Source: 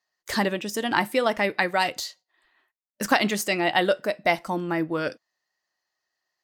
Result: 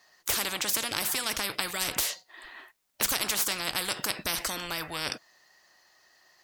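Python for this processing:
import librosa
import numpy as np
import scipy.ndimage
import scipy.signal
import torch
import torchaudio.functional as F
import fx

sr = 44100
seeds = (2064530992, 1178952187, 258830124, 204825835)

y = fx.spectral_comp(x, sr, ratio=10.0)
y = F.gain(torch.from_numpy(y), -3.0).numpy()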